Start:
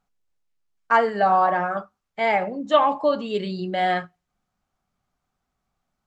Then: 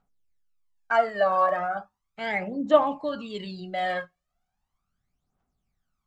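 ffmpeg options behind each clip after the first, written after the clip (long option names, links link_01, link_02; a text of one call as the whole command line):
ffmpeg -i in.wav -af "aphaser=in_gain=1:out_gain=1:delay=1.9:decay=0.7:speed=0.37:type=triangular,volume=-7dB" out.wav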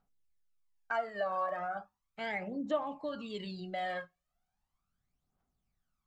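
ffmpeg -i in.wav -af "acompressor=threshold=-32dB:ratio=2,volume=-4.5dB" out.wav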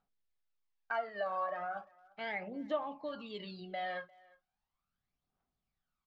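ffmpeg -i in.wav -filter_complex "[0:a]lowpass=frequency=5000:width=0.5412,lowpass=frequency=5000:width=1.3066,lowshelf=frequency=250:gain=-6.5,asplit=2[link_01][link_02];[link_02]adelay=350,highpass=300,lowpass=3400,asoftclip=type=hard:threshold=-32dB,volume=-24dB[link_03];[link_01][link_03]amix=inputs=2:normalize=0,volume=-1.5dB" out.wav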